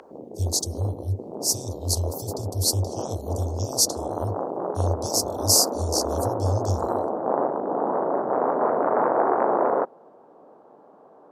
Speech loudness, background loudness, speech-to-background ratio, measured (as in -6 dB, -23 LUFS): -25.5 LUFS, -27.0 LUFS, 1.5 dB